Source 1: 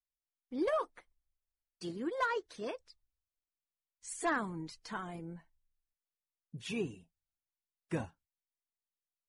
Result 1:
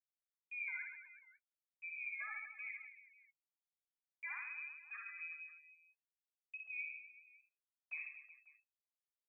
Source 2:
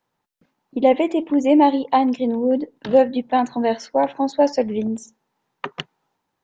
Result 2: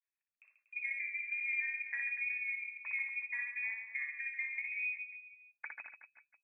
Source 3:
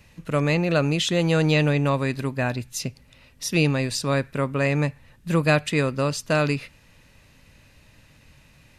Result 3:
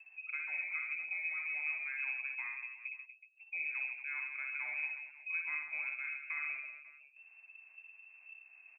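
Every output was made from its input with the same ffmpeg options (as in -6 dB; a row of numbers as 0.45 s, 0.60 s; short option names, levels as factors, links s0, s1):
-af "bandreject=f=140.1:t=h:w=4,bandreject=f=280.2:t=h:w=4,afftdn=nr=20:nf=-35,acompressor=mode=upward:threshold=0.0501:ratio=2.5,lowpass=f=2300:t=q:w=0.5098,lowpass=f=2300:t=q:w=0.6013,lowpass=f=2300:t=q:w=0.9,lowpass=f=2300:t=q:w=2.563,afreqshift=-2700,agate=range=0.00158:threshold=0.00251:ratio=16:detection=peak,aderivative,acompressor=threshold=0.0224:ratio=5,lowshelf=f=110:g=-8,aecho=1:1:60|138|239.4|371.2|542.6:0.631|0.398|0.251|0.158|0.1,volume=0.596"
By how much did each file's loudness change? -7.5 LU, -17.5 LU, -14.5 LU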